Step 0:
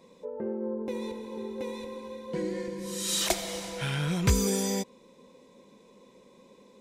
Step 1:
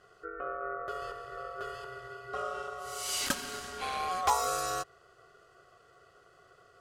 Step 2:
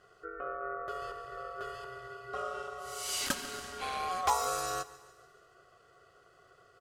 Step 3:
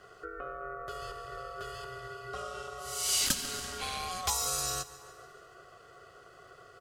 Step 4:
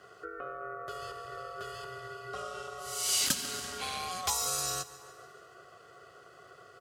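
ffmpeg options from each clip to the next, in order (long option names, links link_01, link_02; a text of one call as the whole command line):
ffmpeg -i in.wav -af "aeval=exprs='val(0)*sin(2*PI*920*n/s)':channel_layout=same,volume=-1.5dB" out.wav
ffmpeg -i in.wav -af "aecho=1:1:143|286|429|572|715:0.112|0.0617|0.0339|0.0187|0.0103,volume=-1.5dB" out.wav
ffmpeg -i in.wav -filter_complex "[0:a]acrossover=split=190|3000[link_01][link_02][link_03];[link_02]acompressor=threshold=-51dB:ratio=2.5[link_04];[link_01][link_04][link_03]amix=inputs=3:normalize=0,volume=7.5dB" out.wav
ffmpeg -i in.wav -af "highpass=97" out.wav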